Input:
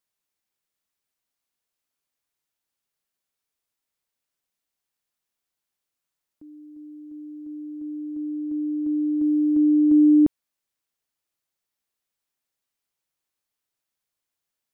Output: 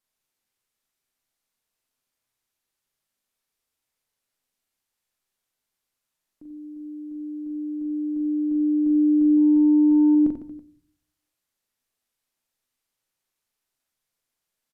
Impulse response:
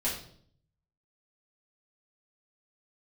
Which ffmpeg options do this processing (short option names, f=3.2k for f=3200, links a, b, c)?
-filter_complex "[0:a]asettb=1/sr,asplit=3[a][b][c];[a]atrim=end=9.374[d];[b]atrim=start=9.37:end=10.15,asetpts=PTS-STARTPTS,afade=t=in:d=0.004:c=qsin,afade=t=out:st=0.776:d=0.004:c=qsin,acontrast=43[e];[c]atrim=start=10.146[f];[d][e]acrossfade=d=0.004:c1=hsin:c2=qsin[g];[g][f]acrossfade=d=0.004:c1=qsin:c2=hsin,alimiter=limit=-18.5dB:level=0:latency=1:release=28,aecho=1:1:40|90|152.5|230.6|328.3:0.631|0.398|0.251|0.158|0.1,asplit=2[h][i];[1:a]atrim=start_sample=2205,lowshelf=f=150:g=9[j];[i][j]afir=irnorm=-1:irlink=0,volume=-18dB[k];[h][k]amix=inputs=2:normalize=0,aresample=32000,aresample=44100"